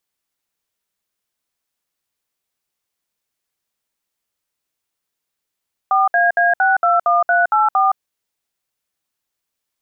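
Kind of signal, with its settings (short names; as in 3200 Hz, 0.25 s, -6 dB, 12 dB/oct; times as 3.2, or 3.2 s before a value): DTMF "4AA621384", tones 0.167 s, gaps 63 ms, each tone -14 dBFS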